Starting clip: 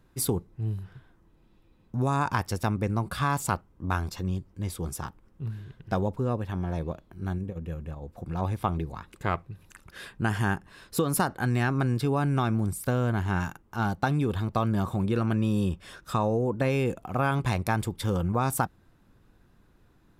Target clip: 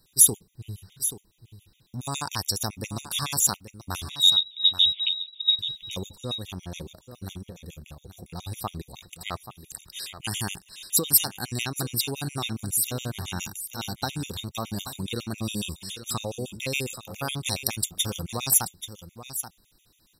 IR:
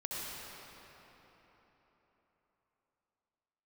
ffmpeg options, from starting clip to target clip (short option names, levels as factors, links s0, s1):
-filter_complex "[0:a]asettb=1/sr,asplit=3[s0][s1][s2];[s0]atrim=end=4.104[s3];[s1]atrim=start=4.1:end=5.59,asetpts=PTS-STARTPTS,afade=t=in:d=0.004:c=qsin,afade=t=out:st=1.486:d=0.004:c=qsin,lowpass=f=3300:t=q:w=0.5098,lowpass=f=3300:t=q:w=0.6013,lowpass=f=3300:t=q:w=0.9,lowpass=f=3300:t=q:w=2.563,afreqshift=-3900[s4];[s2]atrim=start=5.586[s5];[s3][s4]acrossfade=d=0.004:c1=hsin:c2=qsin[s6];[s6][s5]acrossfade=d=0.004:c1=qsin:c2=hsin,aexciter=amount=10.9:drive=3.3:freq=2500,asplit=2[s7][s8];[s8]aecho=0:1:832:0.266[s9];[s7][s9]amix=inputs=2:normalize=0,afftfilt=real='re*gt(sin(2*PI*7.2*pts/sr)*(1-2*mod(floor(b*sr/1024/1900),2)),0)':imag='im*gt(sin(2*PI*7.2*pts/sr)*(1-2*mod(floor(b*sr/1024/1900),2)),0)':win_size=1024:overlap=0.75,volume=0.596"